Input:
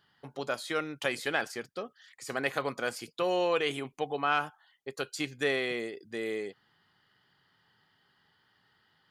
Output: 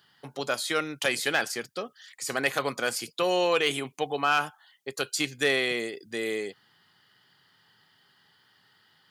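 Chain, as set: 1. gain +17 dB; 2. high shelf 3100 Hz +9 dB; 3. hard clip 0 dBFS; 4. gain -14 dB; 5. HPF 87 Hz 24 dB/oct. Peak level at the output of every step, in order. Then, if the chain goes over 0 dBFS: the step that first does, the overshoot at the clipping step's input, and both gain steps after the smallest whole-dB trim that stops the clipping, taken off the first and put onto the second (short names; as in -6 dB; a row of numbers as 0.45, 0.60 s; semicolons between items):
+4.0, +6.0, 0.0, -14.0, -12.0 dBFS; step 1, 6.0 dB; step 1 +11 dB, step 4 -8 dB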